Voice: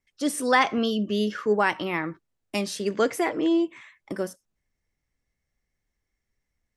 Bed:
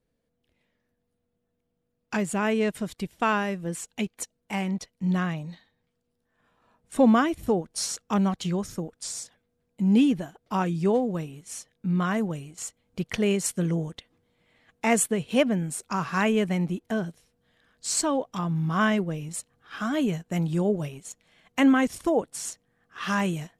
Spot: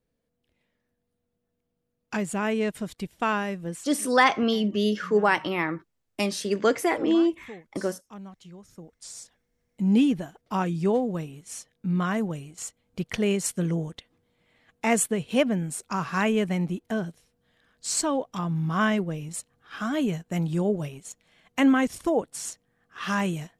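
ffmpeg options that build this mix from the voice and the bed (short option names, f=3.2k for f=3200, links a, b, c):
-filter_complex "[0:a]adelay=3650,volume=1dB[a];[1:a]volume=16.5dB,afade=t=out:st=3.68:d=0.28:silence=0.141254,afade=t=in:st=8.62:d=1.27:silence=0.125893[b];[a][b]amix=inputs=2:normalize=0"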